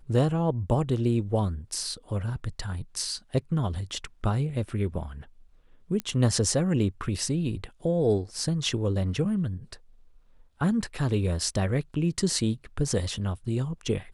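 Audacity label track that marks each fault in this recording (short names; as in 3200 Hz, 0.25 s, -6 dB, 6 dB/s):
6.000000	6.000000	pop -16 dBFS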